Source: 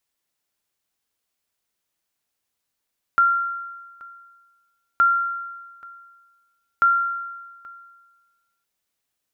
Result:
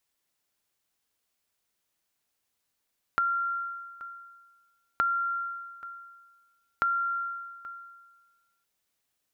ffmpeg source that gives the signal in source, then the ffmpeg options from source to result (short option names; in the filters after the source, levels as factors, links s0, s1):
-f lavfi -i "aevalsrc='0.282*(sin(2*PI*1380*mod(t,1.82))*exp(-6.91*mod(t,1.82)/1.38)+0.0708*sin(2*PI*1380*max(mod(t,1.82)-0.83,0))*exp(-6.91*max(mod(t,1.82)-0.83,0)/1.38))':d=5.46:s=44100"
-af "acompressor=threshold=0.0447:ratio=4"